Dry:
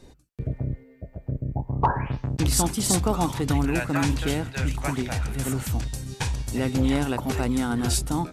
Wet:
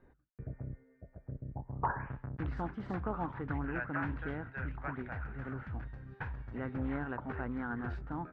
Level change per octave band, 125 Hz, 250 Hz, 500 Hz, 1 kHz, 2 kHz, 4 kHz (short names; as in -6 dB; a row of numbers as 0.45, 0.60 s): -14.0 dB, -14.0 dB, -13.0 dB, -11.0 dB, -8.0 dB, under -30 dB